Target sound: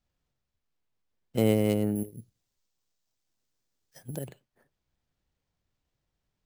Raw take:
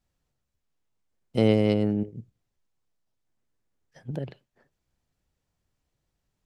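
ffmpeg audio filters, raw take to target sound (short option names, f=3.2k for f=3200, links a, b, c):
-filter_complex "[0:a]acrusher=samples=4:mix=1:aa=0.000001,asettb=1/sr,asplit=3[a][b][c];[a]atrim=end=1.954[d];[b]atrim=start=1.95:end=4.28,asetpts=PTS-STARTPTS,afade=t=in:d=0.004:c=qsin,afade=t=out:st=2.326:d=0.004:c=qsin,bass=f=250:g=-2,treble=f=4k:g=13[e];[c]atrim=start=4.276[f];[d][e]acrossfade=d=0.004:c1=hsin:c2=qsin[g];[g][f]acrossfade=d=0.004:c1=qsin:c2=hsin,volume=-3dB"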